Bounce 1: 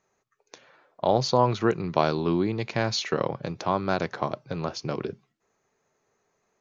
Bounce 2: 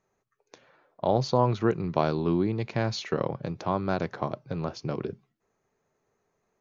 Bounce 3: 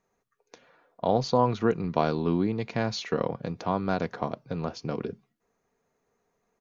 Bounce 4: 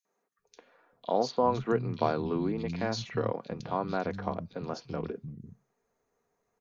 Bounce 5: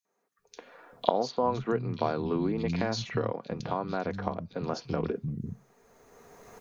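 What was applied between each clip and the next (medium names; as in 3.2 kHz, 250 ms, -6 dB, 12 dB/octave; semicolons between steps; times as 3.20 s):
tilt EQ -1.5 dB/octave; trim -3.5 dB
comb 4.2 ms, depth 34%
three bands offset in time highs, mids, lows 50/390 ms, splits 190/2900 Hz; trim -2.5 dB
recorder AGC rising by 16 dB/s; trim -1.5 dB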